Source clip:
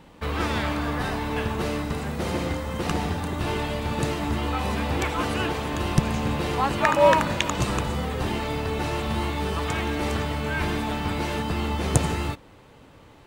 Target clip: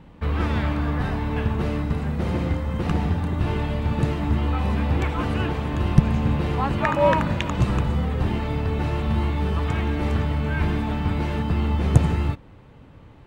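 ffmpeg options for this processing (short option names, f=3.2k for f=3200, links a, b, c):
-af "bass=f=250:g=9,treble=f=4k:g=-10,volume=-2dB"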